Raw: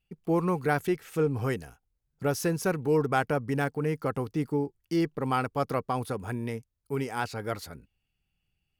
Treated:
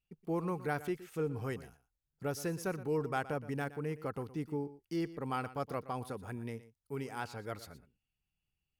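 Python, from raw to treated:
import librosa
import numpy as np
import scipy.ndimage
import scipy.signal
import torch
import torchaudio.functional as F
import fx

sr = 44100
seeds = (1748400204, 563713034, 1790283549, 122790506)

y = x + 10.0 ** (-16.0 / 20.0) * np.pad(x, (int(119 * sr / 1000.0), 0))[:len(x)]
y = F.gain(torch.from_numpy(y), -9.0).numpy()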